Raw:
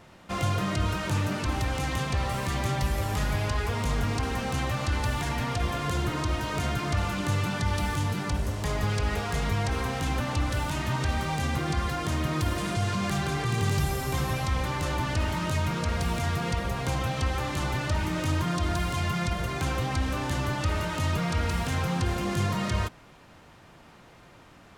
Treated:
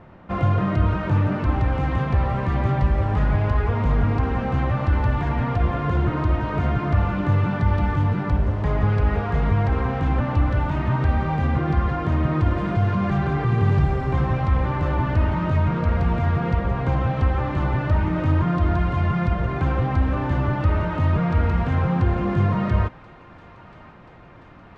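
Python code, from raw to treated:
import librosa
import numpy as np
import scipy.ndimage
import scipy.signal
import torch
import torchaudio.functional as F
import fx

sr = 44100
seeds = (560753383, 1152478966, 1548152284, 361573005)

y = scipy.signal.sosfilt(scipy.signal.butter(2, 1600.0, 'lowpass', fs=sr, output='sos'), x)
y = fx.low_shelf(y, sr, hz=220.0, db=4.0)
y = fx.echo_thinned(y, sr, ms=1032, feedback_pct=79, hz=1000.0, wet_db=-18.5)
y = F.gain(torch.from_numpy(y), 5.0).numpy()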